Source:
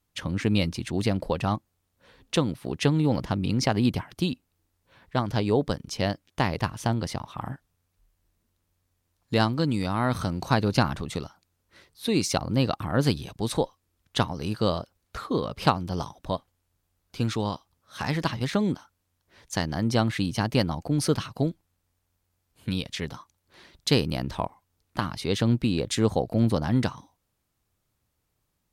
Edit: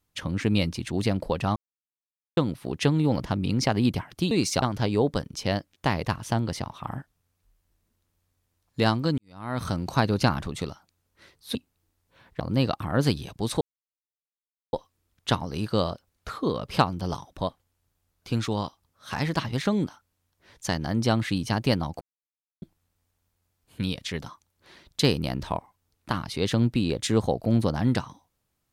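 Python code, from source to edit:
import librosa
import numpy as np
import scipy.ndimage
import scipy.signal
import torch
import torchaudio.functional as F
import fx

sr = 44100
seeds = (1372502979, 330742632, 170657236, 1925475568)

y = fx.edit(x, sr, fx.silence(start_s=1.56, length_s=0.81),
    fx.swap(start_s=4.31, length_s=0.85, other_s=12.09, other_length_s=0.31),
    fx.fade_in_span(start_s=9.72, length_s=0.48, curve='qua'),
    fx.insert_silence(at_s=13.61, length_s=1.12),
    fx.silence(start_s=20.89, length_s=0.61), tone=tone)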